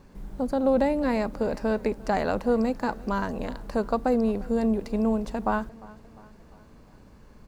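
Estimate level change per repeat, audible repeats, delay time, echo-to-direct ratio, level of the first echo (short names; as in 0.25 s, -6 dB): -5.5 dB, 3, 0.351 s, -20.5 dB, -22.0 dB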